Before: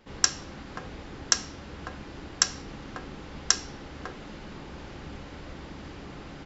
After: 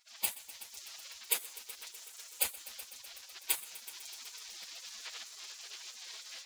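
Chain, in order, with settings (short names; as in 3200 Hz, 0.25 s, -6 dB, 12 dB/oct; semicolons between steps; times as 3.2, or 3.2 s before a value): minimum comb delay 6.8 ms; 1.92–2.4 high shelf 3800 Hz +9.5 dB; AGC gain up to 6.5 dB; tone controls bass +4 dB, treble -2 dB; spectral gate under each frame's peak -30 dB weak; multi-head echo 0.125 s, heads all three, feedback 63%, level -20 dB; gain +8.5 dB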